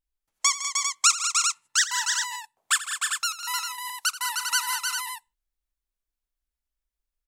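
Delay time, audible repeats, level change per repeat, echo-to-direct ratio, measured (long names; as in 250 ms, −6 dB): 83 ms, 6, repeats not evenly spaced, −1.0 dB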